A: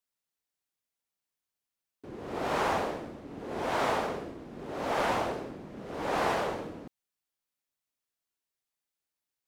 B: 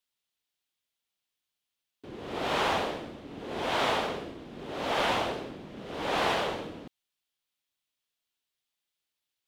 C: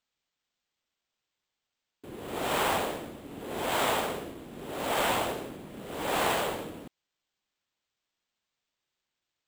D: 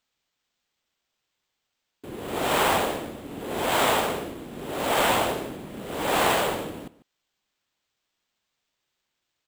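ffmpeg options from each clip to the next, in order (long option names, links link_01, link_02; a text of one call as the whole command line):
ffmpeg -i in.wav -af "equalizer=frequency=3300:width_type=o:width=0.96:gain=9.5" out.wav
ffmpeg -i in.wav -af "acrusher=samples=4:mix=1:aa=0.000001" out.wav
ffmpeg -i in.wav -filter_complex "[0:a]asplit=2[link_01][link_02];[link_02]adelay=145.8,volume=-18dB,highshelf=frequency=4000:gain=-3.28[link_03];[link_01][link_03]amix=inputs=2:normalize=0,volume=5.5dB" out.wav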